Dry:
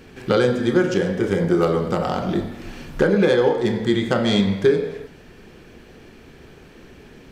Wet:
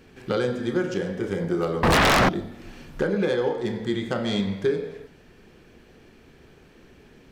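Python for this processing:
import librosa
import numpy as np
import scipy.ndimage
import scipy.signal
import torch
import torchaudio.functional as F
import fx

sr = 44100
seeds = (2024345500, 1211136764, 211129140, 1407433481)

y = fx.fold_sine(x, sr, drive_db=19, ceiling_db=-7.5, at=(1.83, 2.29))
y = y * librosa.db_to_amplitude(-7.0)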